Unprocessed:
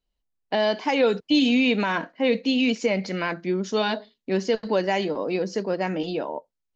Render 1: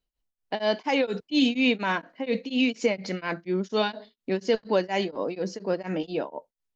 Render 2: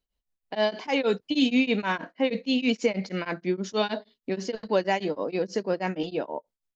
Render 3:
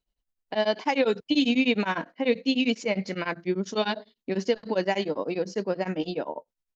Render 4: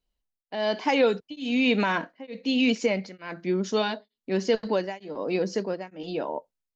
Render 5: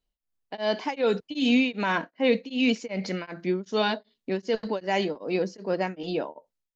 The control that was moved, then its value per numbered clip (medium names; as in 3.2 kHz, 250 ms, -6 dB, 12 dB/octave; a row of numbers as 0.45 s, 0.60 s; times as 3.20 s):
tremolo of two beating tones, nulls at: 4.2 Hz, 6.3 Hz, 10 Hz, 1.1 Hz, 2.6 Hz